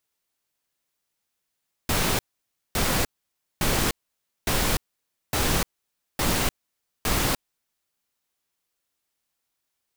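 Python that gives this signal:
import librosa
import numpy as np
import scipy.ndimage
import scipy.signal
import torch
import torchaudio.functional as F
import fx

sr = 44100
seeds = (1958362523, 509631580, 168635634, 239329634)

y = fx.noise_burst(sr, seeds[0], colour='pink', on_s=0.3, off_s=0.56, bursts=7, level_db=-23.0)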